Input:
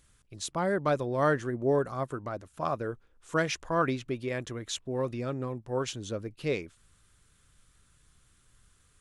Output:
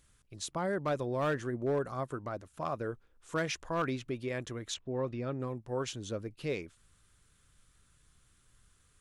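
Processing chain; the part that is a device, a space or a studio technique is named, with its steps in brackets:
clipper into limiter (hard clipping −20 dBFS, distortion −20 dB; brickwall limiter −22.5 dBFS, peak gain reduction 2.5 dB)
0:04.74–0:05.40: high-frequency loss of the air 130 metres
level −2.5 dB

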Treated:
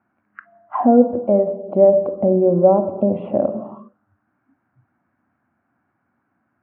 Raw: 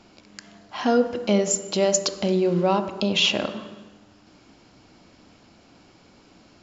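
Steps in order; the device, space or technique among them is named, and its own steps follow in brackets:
0:01.20–0:01.68: parametric band 210 Hz −5 dB 1.9 octaves
noise reduction from a noise print of the clip's start 21 dB
envelope filter bass rig (envelope-controlled low-pass 550–1,600 Hz down, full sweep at −25.5 dBFS; loudspeaker in its box 87–2,400 Hz, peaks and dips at 92 Hz +8 dB, 130 Hz +6 dB, 240 Hz +7 dB, 460 Hz −7 dB, 750 Hz +5 dB, 1,100 Hz +3 dB)
level +1 dB

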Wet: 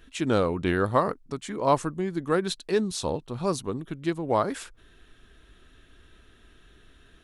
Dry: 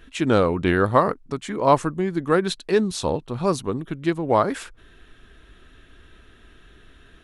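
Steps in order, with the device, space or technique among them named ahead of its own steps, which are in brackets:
exciter from parts (in parallel at −5 dB: high-pass filter 3,000 Hz 12 dB per octave + soft clipping −20 dBFS, distortion −21 dB)
on the sum: level −5 dB

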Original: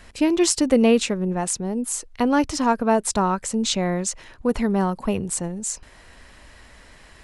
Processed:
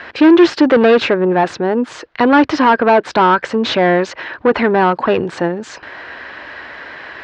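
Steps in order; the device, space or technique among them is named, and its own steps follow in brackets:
overdrive pedal into a guitar cabinet (mid-hump overdrive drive 27 dB, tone 1,500 Hz, clips at −1 dBFS; loudspeaker in its box 78–4,500 Hz, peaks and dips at 200 Hz −7 dB, 330 Hz +4 dB, 1,600 Hz +7 dB)

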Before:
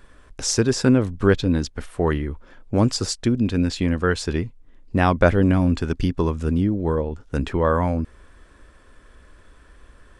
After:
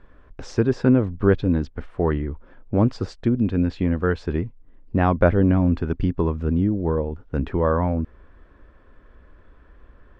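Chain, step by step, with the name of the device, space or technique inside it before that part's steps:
phone in a pocket (low-pass filter 3,500 Hz 12 dB per octave; high-shelf EQ 2,100 Hz −11.5 dB)

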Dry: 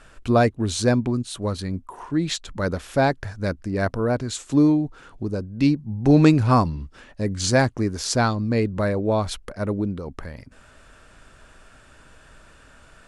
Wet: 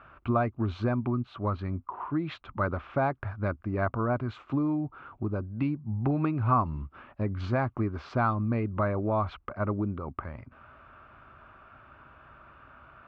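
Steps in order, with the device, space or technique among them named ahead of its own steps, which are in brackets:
bass amplifier (downward compressor 5 to 1, threshold −21 dBFS, peak gain reduction 11 dB; loudspeaker in its box 75–2,300 Hz, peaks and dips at 180 Hz −8 dB, 280 Hz −4 dB, 470 Hz −10 dB, 1,200 Hz +8 dB, 1,800 Hz −9 dB)

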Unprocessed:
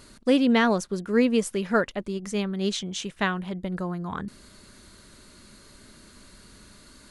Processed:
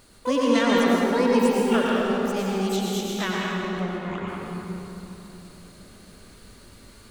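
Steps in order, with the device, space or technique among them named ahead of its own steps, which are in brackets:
shimmer-style reverb (pitch-shifted copies added +12 semitones −5 dB; convolution reverb RT60 3.4 s, pre-delay 90 ms, DRR −4 dB)
level −5 dB

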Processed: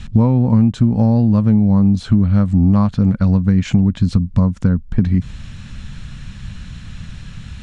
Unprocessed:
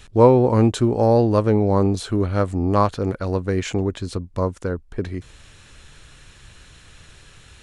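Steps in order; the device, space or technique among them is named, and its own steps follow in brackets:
jukebox (low-pass filter 6,200 Hz 12 dB per octave; low shelf with overshoot 280 Hz +10 dB, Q 3; downward compressor 6 to 1, threshold −16 dBFS, peak gain reduction 15.5 dB)
level +6 dB

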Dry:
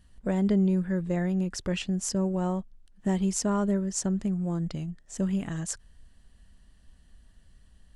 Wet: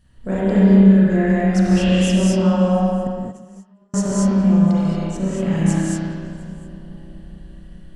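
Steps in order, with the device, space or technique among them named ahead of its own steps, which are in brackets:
dub delay into a spring reverb (feedback echo with a low-pass in the loop 421 ms, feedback 64%, low-pass 1,600 Hz, level −15 dB; spring reverb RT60 1.7 s, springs 31/54 ms, chirp 40 ms, DRR −8.5 dB)
0:03.07–0:03.94: noise gate −9 dBFS, range −46 dB
echo through a band-pass that steps 141 ms, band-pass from 200 Hz, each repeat 1.4 octaves, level −11 dB
reverb whose tail is shaped and stops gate 260 ms rising, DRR −2 dB

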